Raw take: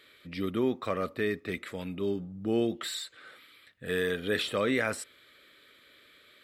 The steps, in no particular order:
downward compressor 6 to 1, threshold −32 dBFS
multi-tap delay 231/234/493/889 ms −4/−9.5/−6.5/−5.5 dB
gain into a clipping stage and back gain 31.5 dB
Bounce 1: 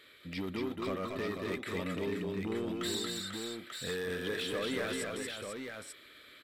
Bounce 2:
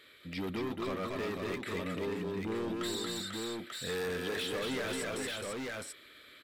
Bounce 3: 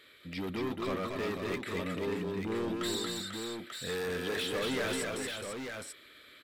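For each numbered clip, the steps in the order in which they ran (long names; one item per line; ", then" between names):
downward compressor, then gain into a clipping stage and back, then multi-tap delay
gain into a clipping stage and back, then multi-tap delay, then downward compressor
gain into a clipping stage and back, then downward compressor, then multi-tap delay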